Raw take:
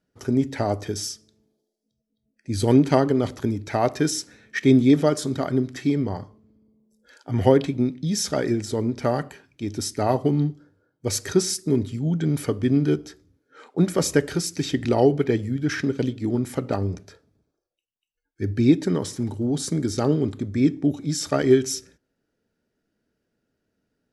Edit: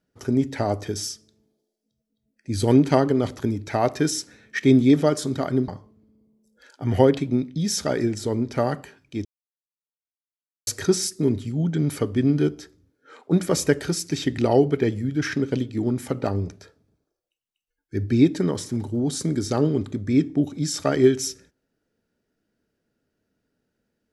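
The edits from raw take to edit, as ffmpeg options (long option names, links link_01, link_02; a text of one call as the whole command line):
ffmpeg -i in.wav -filter_complex "[0:a]asplit=4[link_01][link_02][link_03][link_04];[link_01]atrim=end=5.682[link_05];[link_02]atrim=start=6.148:end=9.72,asetpts=PTS-STARTPTS,afade=type=out:start_time=3.568:duration=0.004:curve=hsin[link_06];[link_03]atrim=start=9.72:end=11.14,asetpts=PTS-STARTPTS,volume=0[link_07];[link_04]atrim=start=11.14,asetpts=PTS-STARTPTS,afade=type=in:duration=0.004:curve=hsin[link_08];[link_06][link_07][link_08]concat=n=3:v=0:a=1[link_09];[link_05][link_09]acrossfade=duration=0.004:curve1=hsin:curve2=hsin" out.wav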